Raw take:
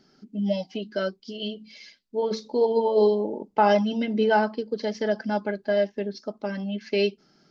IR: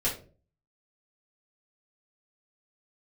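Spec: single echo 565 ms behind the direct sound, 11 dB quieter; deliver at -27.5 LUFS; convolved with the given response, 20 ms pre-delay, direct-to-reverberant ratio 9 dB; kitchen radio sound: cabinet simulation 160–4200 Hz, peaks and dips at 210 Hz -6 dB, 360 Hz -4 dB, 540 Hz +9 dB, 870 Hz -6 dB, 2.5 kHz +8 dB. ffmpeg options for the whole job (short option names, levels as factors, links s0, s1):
-filter_complex "[0:a]aecho=1:1:565:0.282,asplit=2[s0][s1];[1:a]atrim=start_sample=2205,adelay=20[s2];[s1][s2]afir=irnorm=-1:irlink=0,volume=0.141[s3];[s0][s3]amix=inputs=2:normalize=0,highpass=160,equalizer=f=210:t=q:w=4:g=-6,equalizer=f=360:t=q:w=4:g=-4,equalizer=f=540:t=q:w=4:g=9,equalizer=f=870:t=q:w=4:g=-6,equalizer=f=2500:t=q:w=4:g=8,lowpass=f=4200:w=0.5412,lowpass=f=4200:w=1.3066,volume=0.668"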